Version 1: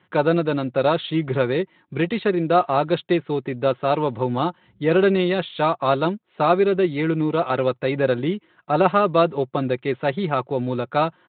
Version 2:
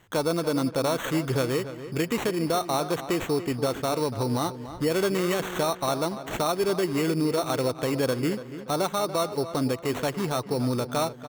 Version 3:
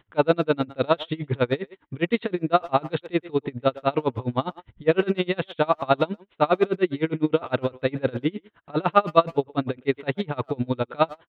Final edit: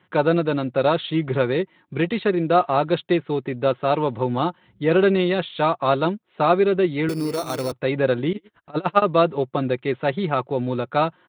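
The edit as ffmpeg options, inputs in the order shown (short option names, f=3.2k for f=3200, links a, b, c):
-filter_complex "[0:a]asplit=3[a][b][c];[a]atrim=end=7.092[d];[1:a]atrim=start=7.088:end=7.722[e];[b]atrim=start=7.718:end=8.332[f];[2:a]atrim=start=8.328:end=9.022[g];[c]atrim=start=9.018[h];[d][e]acrossfade=d=0.004:c1=hsin:c2=hsin[i];[i][f]acrossfade=d=0.004:c1=hsin:c2=hsin[j];[j][g]acrossfade=d=0.004:c1=hsin:c2=hsin[k];[k][h]acrossfade=d=0.004:c1=hsin:c2=hsin"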